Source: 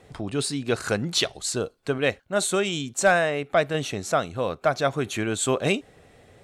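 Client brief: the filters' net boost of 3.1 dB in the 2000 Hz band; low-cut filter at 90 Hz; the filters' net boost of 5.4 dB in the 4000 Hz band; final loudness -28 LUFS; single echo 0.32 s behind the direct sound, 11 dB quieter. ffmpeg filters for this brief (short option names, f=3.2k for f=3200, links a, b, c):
-af "highpass=90,equalizer=f=2k:t=o:g=3,equalizer=f=4k:t=o:g=5.5,aecho=1:1:320:0.282,volume=-5dB"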